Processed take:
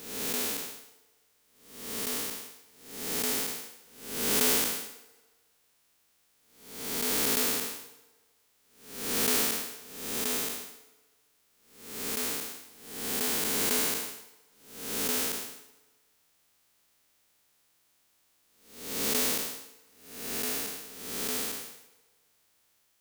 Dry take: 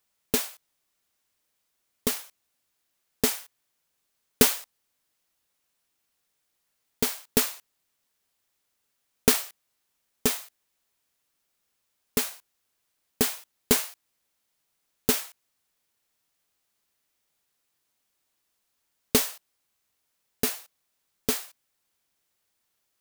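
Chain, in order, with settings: time blur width 0.434 s; FDN reverb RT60 1.5 s, low-frequency decay 0.75×, high-frequency decay 0.8×, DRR 15.5 dB; gain +9 dB

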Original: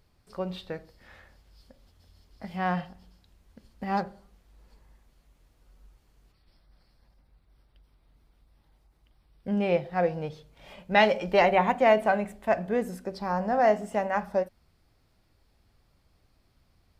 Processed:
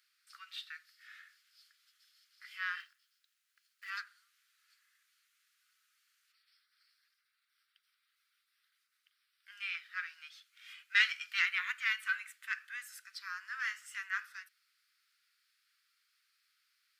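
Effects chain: 2.8–3.9 G.711 law mismatch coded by A; soft clip -11 dBFS, distortion -22 dB; steep high-pass 1300 Hz 72 dB/oct

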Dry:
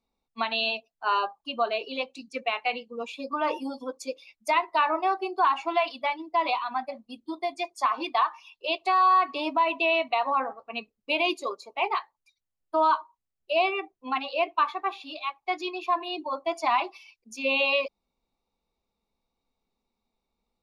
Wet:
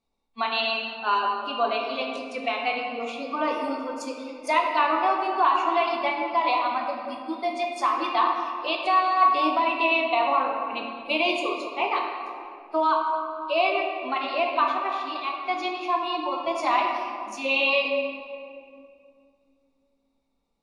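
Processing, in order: reverb RT60 2.4 s, pre-delay 7 ms, DRR 0.5 dB; AAC 48 kbps 24000 Hz

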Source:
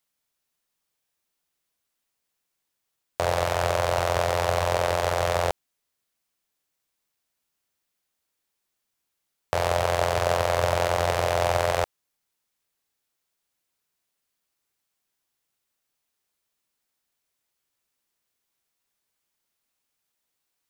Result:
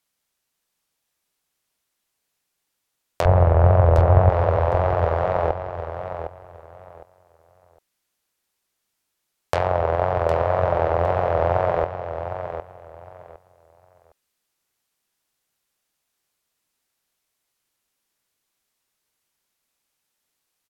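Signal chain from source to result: 3.25–4.3 RIAA curve playback; wow and flutter 98 cents; treble ducked by the level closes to 1200 Hz, closed at -20 dBFS; feedback echo 0.759 s, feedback 22%, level -9 dB; gain +3.5 dB

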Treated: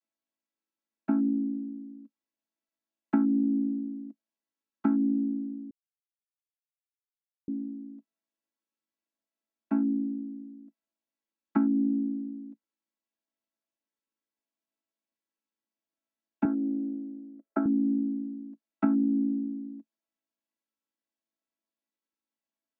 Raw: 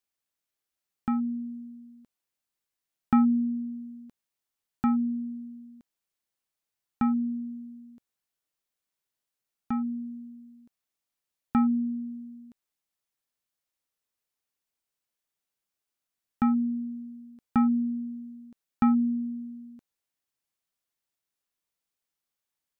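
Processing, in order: chord vocoder major triad, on A3; compressor 6:1, threshold -27 dBFS, peak gain reduction 10 dB; 5.71–7.48 mute; 16.45–17.66 speaker cabinet 320–2000 Hz, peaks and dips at 390 Hz +8 dB, 570 Hz +9 dB, 940 Hz -4 dB, 1400 Hz +3 dB; gain +5.5 dB

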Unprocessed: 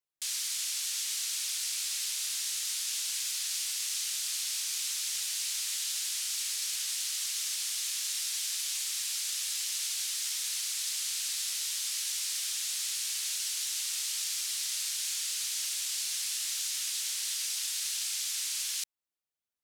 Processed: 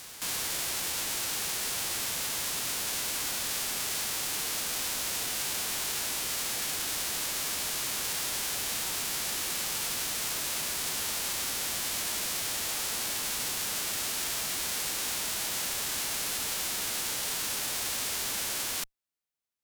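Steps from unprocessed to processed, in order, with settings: spectral whitening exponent 0.3; in parallel at -9 dB: Schmitt trigger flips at -31 dBFS; on the sum: reverse echo 0.306 s -12.5 dB

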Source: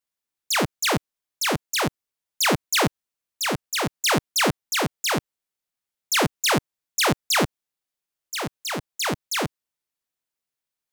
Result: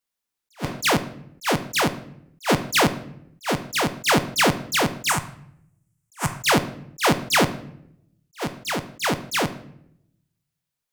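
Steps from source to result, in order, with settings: 5.09–6.3 graphic EQ 125/250/500/1000/4000/8000 Hz +4/-11/-12/+5/-11/+11 dB; reverb RT60 0.75 s, pre-delay 4 ms, DRR 10.5 dB; attack slew limiter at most 400 dB/s; gain +2.5 dB

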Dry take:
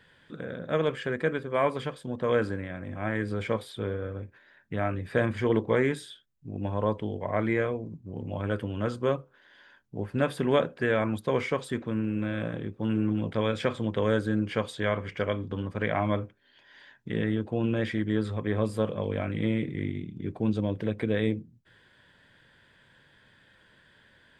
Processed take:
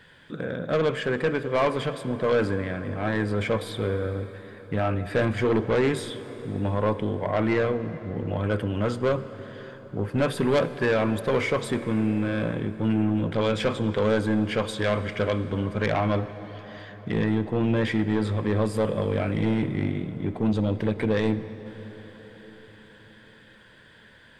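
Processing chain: soft clip -23 dBFS, distortion -11 dB; reverb RT60 5.9 s, pre-delay 48 ms, DRR 12.5 dB; gain +6.5 dB

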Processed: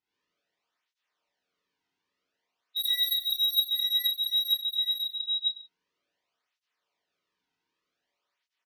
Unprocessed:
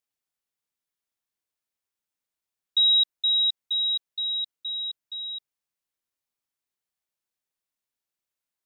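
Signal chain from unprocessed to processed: bin magnitudes rounded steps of 30 dB; Bessel low-pass 3600 Hz, order 8; hard clip -33.5 dBFS, distortion -5 dB; on a send: reverse bouncing-ball echo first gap 30 ms, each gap 1.1×, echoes 5; on the sum: non-linear reverb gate 0.12 s rising, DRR -7 dB; tape flanging out of phase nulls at 0.53 Hz, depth 1.8 ms; gain +6 dB

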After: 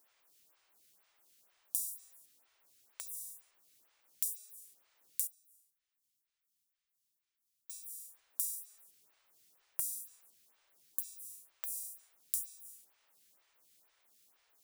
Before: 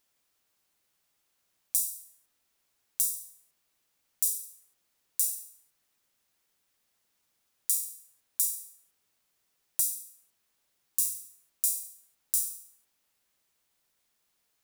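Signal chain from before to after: low shelf 330 Hz -6.5 dB; compressor 8:1, threshold -40 dBFS, peak gain reduction 17.5 dB; 5.27–7.7 passive tone stack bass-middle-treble 6-0-2; photocell phaser 2.1 Hz; gain +8.5 dB

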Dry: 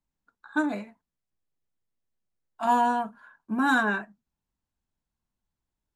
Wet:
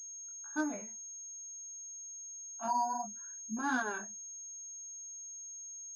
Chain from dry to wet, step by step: 2.68–3.57 spectral contrast raised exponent 2.3; chorus 1.6 Hz, delay 19.5 ms, depth 4.4 ms; pulse-width modulation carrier 6500 Hz; gain -7 dB

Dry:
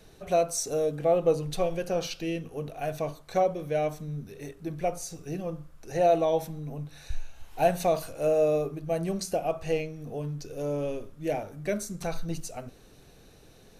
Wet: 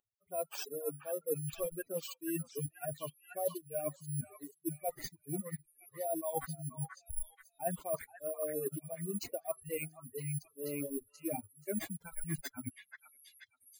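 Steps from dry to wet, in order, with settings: per-bin expansion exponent 3; careless resampling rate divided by 4×, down none, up zero stuff; bell 540 Hz +3.5 dB 1.7 oct; reverse; compressor 10:1, threshold -42 dBFS, peak gain reduction 30 dB; reverse; high shelf 2300 Hz -11.5 dB; on a send: delay with a stepping band-pass 0.482 s, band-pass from 1500 Hz, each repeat 0.7 oct, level -3 dB; on the sum: reverb removal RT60 0.83 s; gain +14 dB

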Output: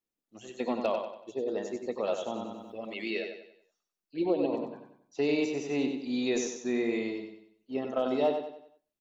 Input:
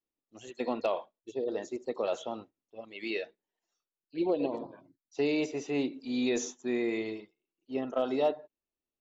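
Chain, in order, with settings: bell 200 Hz +6 dB 0.32 oct; feedback echo 94 ms, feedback 40%, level -6.5 dB; 2.34–3.11 fast leveller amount 50%

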